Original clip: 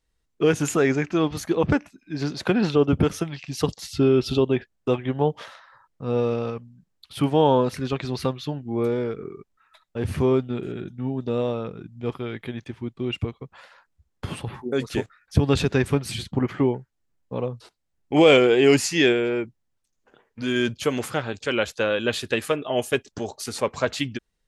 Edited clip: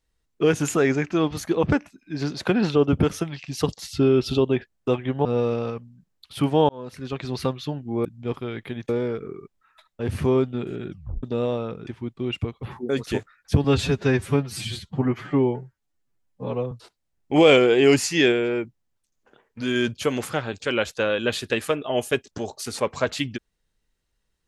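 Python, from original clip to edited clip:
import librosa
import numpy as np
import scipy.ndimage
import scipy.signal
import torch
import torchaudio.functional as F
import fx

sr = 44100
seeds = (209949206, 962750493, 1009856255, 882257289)

y = fx.edit(x, sr, fx.cut(start_s=5.25, length_s=0.8),
    fx.fade_in_span(start_s=7.49, length_s=0.69),
    fx.tape_stop(start_s=10.86, length_s=0.33),
    fx.move(start_s=11.83, length_s=0.84, to_s=8.85),
    fx.cut(start_s=13.43, length_s=1.03),
    fx.stretch_span(start_s=15.47, length_s=2.05, factor=1.5), tone=tone)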